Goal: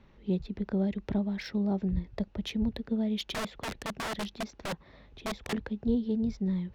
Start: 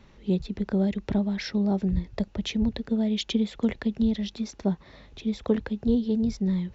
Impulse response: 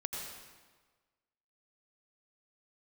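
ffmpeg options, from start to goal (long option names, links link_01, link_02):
-filter_complex "[0:a]asettb=1/sr,asplit=3[link_01][link_02][link_03];[link_01]atrim=end=3.344[link_04];[link_02]atrim=start=3.34:end=5.53,asetpts=PTS-STARTPTS,afade=type=in:duration=0.004:curve=qsin,afade=type=out:start_time=2.186:duration=0.004:curve=qsin,aeval=exprs='(mod(15.8*val(0)+1,2)-1)/15.8':channel_layout=same[link_05];[link_03]atrim=start=5.526[link_06];[link_04][link_05]acrossfade=duration=0.004:curve1=hsin:curve2=qsin[link_07];[link_07][link_06]acrossfade=duration=0.004:curve1=qsin:curve2=hsin,adynamicsmooth=sensitivity=3.5:basefreq=4500,volume=-4.5dB"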